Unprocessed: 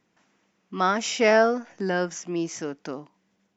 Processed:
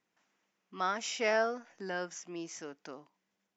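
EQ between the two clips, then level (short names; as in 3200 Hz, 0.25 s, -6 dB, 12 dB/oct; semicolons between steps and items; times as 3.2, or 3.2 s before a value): low shelf 360 Hz -10 dB; -8.5 dB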